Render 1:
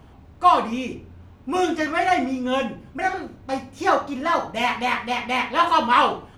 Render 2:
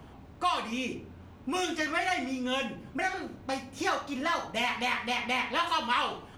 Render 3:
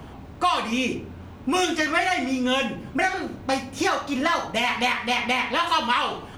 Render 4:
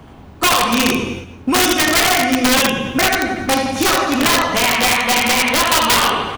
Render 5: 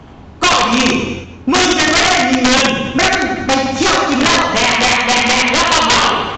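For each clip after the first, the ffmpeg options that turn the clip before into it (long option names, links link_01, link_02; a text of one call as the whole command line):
ffmpeg -i in.wav -filter_complex "[0:a]acrossover=split=120|1800[link_01][link_02][link_03];[link_01]acompressor=threshold=-55dB:ratio=4[link_04];[link_02]acompressor=threshold=-32dB:ratio=4[link_05];[link_03]acompressor=threshold=-30dB:ratio=4[link_06];[link_04][link_05][link_06]amix=inputs=3:normalize=0" out.wav
ffmpeg -i in.wav -af "alimiter=limit=-20dB:level=0:latency=1:release=271,volume=9dB" out.wav
ffmpeg -i in.wav -af "aecho=1:1:80|168|264.8|371.3|488.4:0.631|0.398|0.251|0.158|0.1,aeval=exprs='(mod(5.01*val(0)+1,2)-1)/5.01':channel_layout=same,agate=range=-7dB:threshold=-33dB:ratio=16:detection=peak,volume=7dB" out.wav
ffmpeg -i in.wav -af "aresample=16000,aresample=44100,volume=3dB" out.wav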